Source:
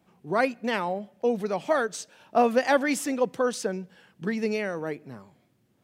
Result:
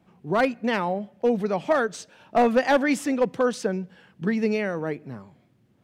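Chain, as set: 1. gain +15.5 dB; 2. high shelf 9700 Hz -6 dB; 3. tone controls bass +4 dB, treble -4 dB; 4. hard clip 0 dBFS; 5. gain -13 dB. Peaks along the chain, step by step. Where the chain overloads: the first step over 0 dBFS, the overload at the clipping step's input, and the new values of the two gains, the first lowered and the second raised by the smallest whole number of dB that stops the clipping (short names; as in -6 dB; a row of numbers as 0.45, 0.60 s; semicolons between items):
+6.5, +6.5, +7.0, 0.0, -13.0 dBFS; step 1, 7.0 dB; step 1 +8.5 dB, step 5 -6 dB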